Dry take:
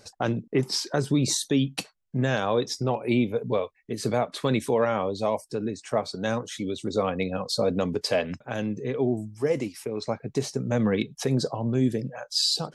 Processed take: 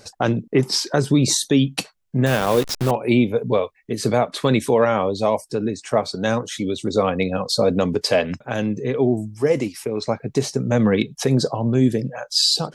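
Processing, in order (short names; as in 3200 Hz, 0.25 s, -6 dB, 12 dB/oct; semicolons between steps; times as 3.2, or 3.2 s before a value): 2.26–2.91 level-crossing sampler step -29.5 dBFS; gain +6.5 dB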